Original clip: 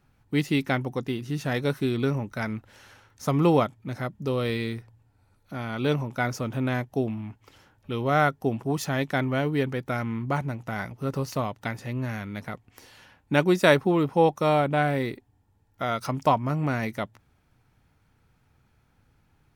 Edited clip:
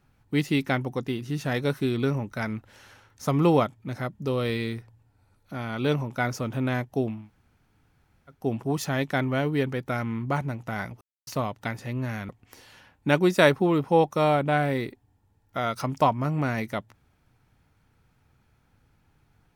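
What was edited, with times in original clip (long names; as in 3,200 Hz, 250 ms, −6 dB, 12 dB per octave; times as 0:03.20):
0:07.19–0:08.39: fill with room tone, crossfade 0.24 s
0:11.01–0:11.27: silence
0:12.29–0:12.54: remove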